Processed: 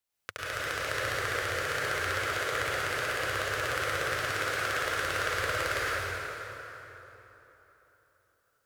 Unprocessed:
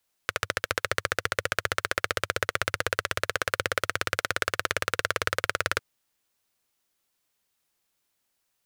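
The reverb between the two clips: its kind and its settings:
dense smooth reverb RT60 3.7 s, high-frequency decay 0.65×, pre-delay 90 ms, DRR −9 dB
level −11 dB

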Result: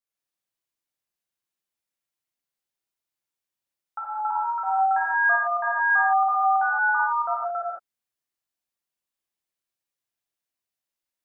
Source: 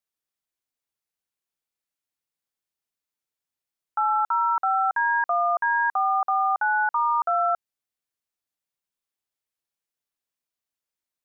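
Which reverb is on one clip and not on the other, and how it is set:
reverb whose tail is shaped and stops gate 250 ms flat, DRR −7 dB
level −7.5 dB

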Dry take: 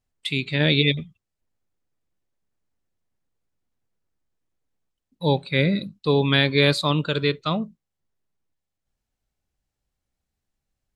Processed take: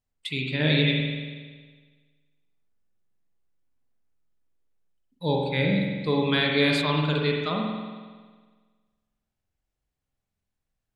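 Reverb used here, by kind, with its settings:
spring reverb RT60 1.5 s, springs 46 ms, chirp 70 ms, DRR −1 dB
level −5.5 dB

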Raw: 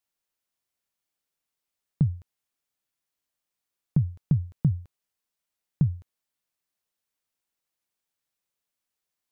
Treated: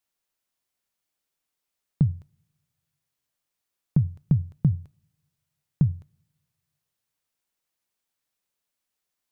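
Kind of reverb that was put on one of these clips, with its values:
coupled-rooms reverb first 0.46 s, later 1.8 s, from −26 dB, DRR 19.5 dB
level +2 dB

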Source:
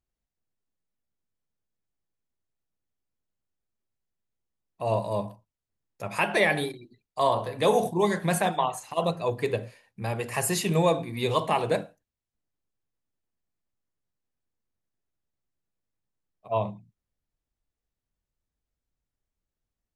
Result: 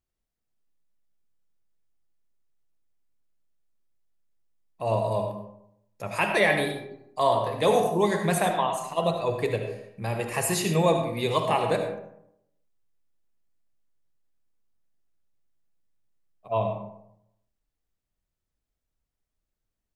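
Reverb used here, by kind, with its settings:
comb and all-pass reverb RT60 0.77 s, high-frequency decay 0.5×, pre-delay 35 ms, DRR 5 dB

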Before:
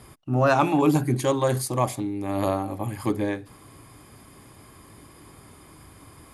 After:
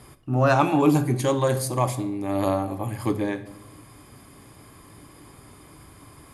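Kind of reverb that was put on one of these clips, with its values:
rectangular room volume 290 cubic metres, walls mixed, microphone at 0.35 metres

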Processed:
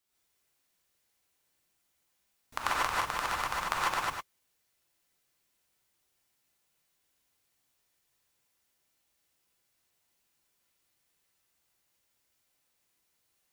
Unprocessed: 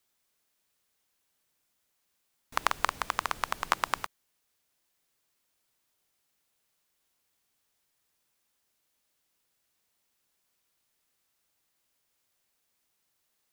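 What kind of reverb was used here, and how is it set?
reverb whose tail is shaped and stops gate 170 ms rising, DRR −6.5 dB
level −6.5 dB

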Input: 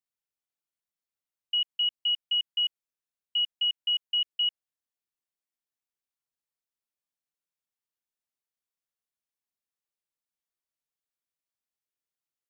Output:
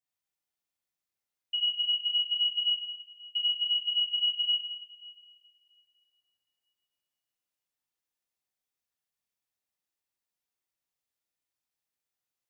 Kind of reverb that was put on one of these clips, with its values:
coupled-rooms reverb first 0.92 s, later 2.8 s, DRR −7 dB
level −5 dB

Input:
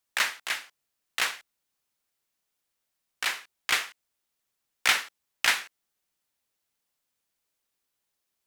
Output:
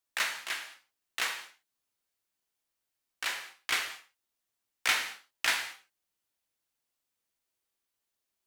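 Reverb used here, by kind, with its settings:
reverb whose tail is shaped and stops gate 240 ms falling, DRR 3.5 dB
level −5.5 dB

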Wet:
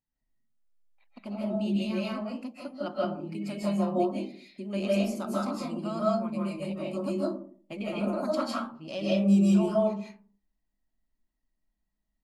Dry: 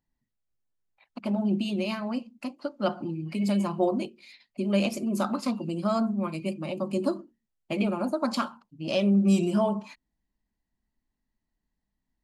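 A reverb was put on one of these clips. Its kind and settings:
comb and all-pass reverb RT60 0.48 s, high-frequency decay 0.35×, pre-delay 115 ms, DRR −6 dB
level −9.5 dB

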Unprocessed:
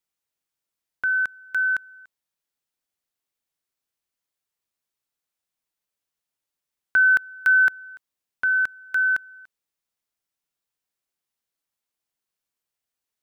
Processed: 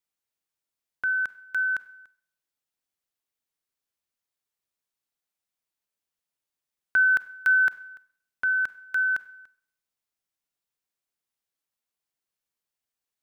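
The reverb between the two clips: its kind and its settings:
four-comb reverb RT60 0.6 s, combs from 31 ms, DRR 17 dB
level −3 dB

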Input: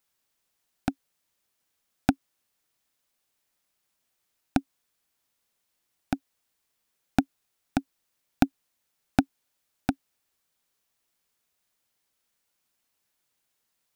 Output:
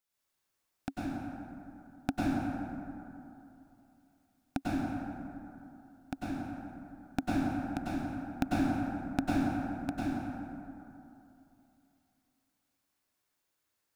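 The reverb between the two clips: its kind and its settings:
dense smooth reverb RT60 2.9 s, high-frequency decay 0.4×, pre-delay 85 ms, DRR −8 dB
level −10.5 dB

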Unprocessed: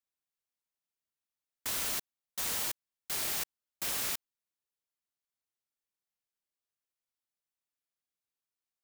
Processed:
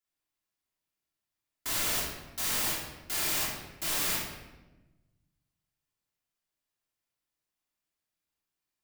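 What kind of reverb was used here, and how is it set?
rectangular room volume 610 cubic metres, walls mixed, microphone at 3.1 metres
level −2 dB

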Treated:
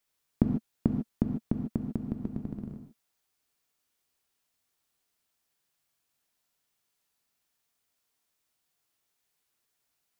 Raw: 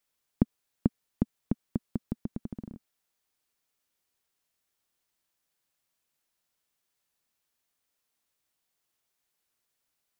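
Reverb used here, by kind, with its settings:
reverb whose tail is shaped and stops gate 170 ms flat, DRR 3.5 dB

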